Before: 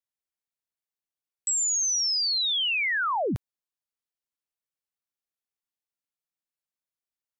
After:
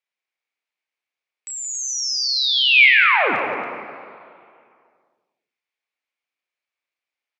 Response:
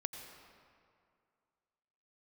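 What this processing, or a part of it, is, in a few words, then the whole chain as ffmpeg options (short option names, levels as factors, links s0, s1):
station announcement: -filter_complex "[0:a]highpass=400,lowpass=4400,equalizer=f=2300:t=o:w=0.44:g=10.5,aecho=1:1:32.07|174.9|277:0.501|0.316|0.355[s0];[1:a]atrim=start_sample=2205[s1];[s0][s1]afir=irnorm=-1:irlink=0,volume=2.24"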